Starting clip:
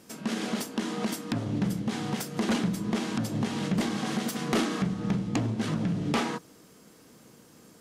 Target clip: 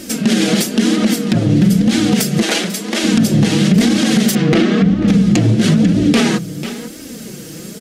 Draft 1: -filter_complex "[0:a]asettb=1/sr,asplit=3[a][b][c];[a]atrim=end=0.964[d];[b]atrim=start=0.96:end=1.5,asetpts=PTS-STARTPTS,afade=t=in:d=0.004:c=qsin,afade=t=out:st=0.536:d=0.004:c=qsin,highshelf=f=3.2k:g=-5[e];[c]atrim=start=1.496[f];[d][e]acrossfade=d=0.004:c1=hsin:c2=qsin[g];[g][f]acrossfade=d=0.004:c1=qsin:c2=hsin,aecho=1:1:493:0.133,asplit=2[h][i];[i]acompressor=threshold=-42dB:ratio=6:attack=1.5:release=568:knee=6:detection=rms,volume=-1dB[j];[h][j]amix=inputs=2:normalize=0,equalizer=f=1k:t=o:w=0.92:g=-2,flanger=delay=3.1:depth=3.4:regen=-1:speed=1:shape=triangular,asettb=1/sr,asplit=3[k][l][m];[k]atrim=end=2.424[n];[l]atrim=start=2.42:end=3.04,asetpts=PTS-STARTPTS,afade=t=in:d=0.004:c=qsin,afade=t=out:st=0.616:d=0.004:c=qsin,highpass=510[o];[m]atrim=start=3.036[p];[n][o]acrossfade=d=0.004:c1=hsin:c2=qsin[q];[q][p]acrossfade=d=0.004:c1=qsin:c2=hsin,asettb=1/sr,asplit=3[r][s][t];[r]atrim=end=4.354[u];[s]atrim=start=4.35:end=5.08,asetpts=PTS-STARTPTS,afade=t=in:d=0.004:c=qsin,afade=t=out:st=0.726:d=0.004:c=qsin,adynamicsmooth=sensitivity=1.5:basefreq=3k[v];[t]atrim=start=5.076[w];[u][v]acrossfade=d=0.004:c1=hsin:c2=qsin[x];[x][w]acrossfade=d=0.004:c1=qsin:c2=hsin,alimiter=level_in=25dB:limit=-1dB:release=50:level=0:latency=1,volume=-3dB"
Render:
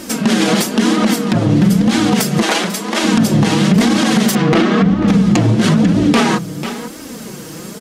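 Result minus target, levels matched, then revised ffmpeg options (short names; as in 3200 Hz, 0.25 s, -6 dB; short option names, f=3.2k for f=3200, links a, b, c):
1000 Hz band +7.0 dB
-filter_complex "[0:a]asettb=1/sr,asplit=3[a][b][c];[a]atrim=end=0.964[d];[b]atrim=start=0.96:end=1.5,asetpts=PTS-STARTPTS,afade=t=in:d=0.004:c=qsin,afade=t=out:st=0.536:d=0.004:c=qsin,highshelf=f=3.2k:g=-5[e];[c]atrim=start=1.496[f];[d][e]acrossfade=d=0.004:c1=hsin:c2=qsin[g];[g][f]acrossfade=d=0.004:c1=qsin:c2=hsin,aecho=1:1:493:0.133,asplit=2[h][i];[i]acompressor=threshold=-42dB:ratio=6:attack=1.5:release=568:knee=6:detection=rms,volume=-1dB[j];[h][j]amix=inputs=2:normalize=0,equalizer=f=1k:t=o:w=0.92:g=-14,flanger=delay=3.1:depth=3.4:regen=-1:speed=1:shape=triangular,asettb=1/sr,asplit=3[k][l][m];[k]atrim=end=2.424[n];[l]atrim=start=2.42:end=3.04,asetpts=PTS-STARTPTS,afade=t=in:d=0.004:c=qsin,afade=t=out:st=0.616:d=0.004:c=qsin,highpass=510[o];[m]atrim=start=3.036[p];[n][o]acrossfade=d=0.004:c1=hsin:c2=qsin[q];[q][p]acrossfade=d=0.004:c1=qsin:c2=hsin,asettb=1/sr,asplit=3[r][s][t];[r]atrim=end=4.354[u];[s]atrim=start=4.35:end=5.08,asetpts=PTS-STARTPTS,afade=t=in:d=0.004:c=qsin,afade=t=out:st=0.726:d=0.004:c=qsin,adynamicsmooth=sensitivity=1.5:basefreq=3k[v];[t]atrim=start=5.076[w];[u][v]acrossfade=d=0.004:c1=hsin:c2=qsin[x];[x][w]acrossfade=d=0.004:c1=qsin:c2=hsin,alimiter=level_in=25dB:limit=-1dB:release=50:level=0:latency=1,volume=-3dB"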